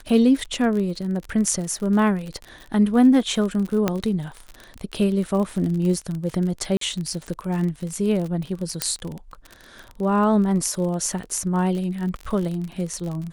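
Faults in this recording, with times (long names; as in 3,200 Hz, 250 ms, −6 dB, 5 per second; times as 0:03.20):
surface crackle 44 per second −28 dBFS
0:03.88: click −7 dBFS
0:06.77–0:06.81: drop-out 43 ms
0:08.82: click −4 dBFS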